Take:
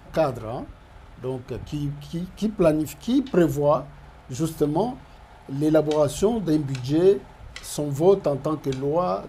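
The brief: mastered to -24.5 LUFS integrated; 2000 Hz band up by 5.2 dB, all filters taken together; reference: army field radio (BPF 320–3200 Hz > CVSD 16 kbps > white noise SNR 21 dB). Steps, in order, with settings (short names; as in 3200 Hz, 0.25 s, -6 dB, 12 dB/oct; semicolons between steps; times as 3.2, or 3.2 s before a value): BPF 320–3200 Hz; bell 2000 Hz +8 dB; CVSD 16 kbps; white noise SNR 21 dB; gain +1.5 dB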